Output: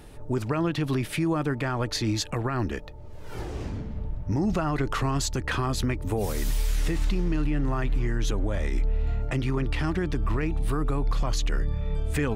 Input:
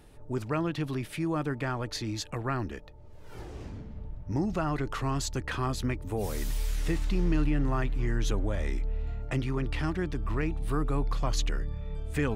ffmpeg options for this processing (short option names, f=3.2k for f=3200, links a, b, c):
-af "alimiter=level_in=1.5dB:limit=-24dB:level=0:latency=1:release=127,volume=-1.5dB,volume=8dB"